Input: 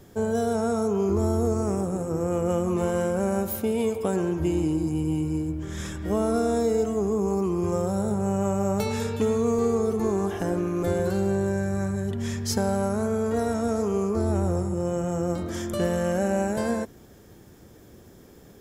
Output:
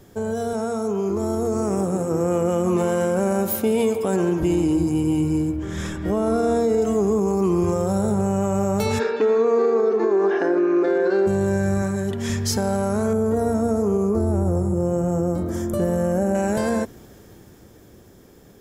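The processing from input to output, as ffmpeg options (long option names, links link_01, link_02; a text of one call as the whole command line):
ffmpeg -i in.wav -filter_complex "[0:a]asettb=1/sr,asplit=3[link_01][link_02][link_03];[link_01]atrim=end=0.534[link_04];[link_02]atrim=start=0.53:end=4.43,asetpts=PTS-STARTPTS,afade=type=in:duration=0.004:curve=qsin,afade=type=out:start_time=3.896:duration=0.004:curve=qsin,highpass=130[link_05];[link_03]atrim=start=4.426[link_06];[link_04][link_05]acrossfade=duration=0.004:curve1=hsin:curve2=qsin[link_07];[link_07][link_06]acrossfade=duration=0.004:curve1=qsin:curve2=hsin,asettb=1/sr,asplit=3[link_08][link_09][link_10];[link_08]atrim=end=5.564[link_11];[link_09]atrim=start=5.56:end=6.82,asetpts=PTS-STARTPTS,afade=type=in:duration=0.004:curve=qsin,afade=type=out:start_time=1.256:duration=0.004:curve=qsin,highshelf=frequency=3600:gain=-6.5[link_12];[link_10]atrim=start=6.816[link_13];[link_11][link_12]acrossfade=duration=0.004:curve1=hsin:curve2=qsin[link_14];[link_14][link_13]acrossfade=duration=0.004:curve1=qsin:curve2=hsin,asplit=3[link_15][link_16][link_17];[link_15]afade=type=out:start_time=8.98:duration=0.02[link_18];[link_16]highpass=frequency=290:width=0.5412,highpass=frequency=290:width=1.3066,equalizer=frequency=370:width_type=q:width=4:gain=8,equalizer=frequency=1600:width_type=q:width=4:gain=7,equalizer=frequency=3200:width_type=q:width=4:gain=-8,lowpass=frequency=4500:width=0.5412,lowpass=frequency=4500:width=1.3066,afade=type=in:start_time=8.98:duration=0.02,afade=type=out:start_time=11.26:duration=0.02[link_19];[link_17]afade=type=in:start_time=11.26:duration=0.02[link_20];[link_18][link_19][link_20]amix=inputs=3:normalize=0,asettb=1/sr,asplit=3[link_21][link_22][link_23];[link_21]atrim=end=11.824[link_24];[link_22]atrim=start=11.82:end=12.3,asetpts=PTS-STARTPTS,afade=type=in:duration=0.004:curve=qsin,afade=type=out:start_time=0.476:duration=0.004:curve=qsin,highpass=frequency=170:poles=1[link_25];[link_23]atrim=start=12.296[link_26];[link_24][link_25]acrossfade=duration=0.004:curve1=hsin:curve2=qsin[link_27];[link_27][link_26]acrossfade=duration=0.004:curve1=qsin:curve2=hsin,asettb=1/sr,asplit=3[link_28][link_29][link_30];[link_28]atrim=end=13.134[link_31];[link_29]atrim=start=13.13:end=16.35,asetpts=PTS-STARTPTS,afade=type=in:duration=0.004:curve=qsin,afade=type=out:start_time=3.216:duration=0.004:curve=qsin,equalizer=frequency=3200:width=0.52:gain=-14[link_32];[link_30]atrim=start=16.346[link_33];[link_31][link_32]acrossfade=duration=0.004:curve1=hsin:curve2=qsin[link_34];[link_34][link_33]acrossfade=duration=0.004:curve1=qsin:curve2=hsin,bandreject=frequency=78.63:width_type=h:width=4,bandreject=frequency=157.26:width_type=h:width=4,bandreject=frequency=235.89:width_type=h:width=4,alimiter=limit=-18.5dB:level=0:latency=1:release=47,dynaudnorm=framelen=140:gausssize=21:maxgain=5dB,volume=1.5dB" out.wav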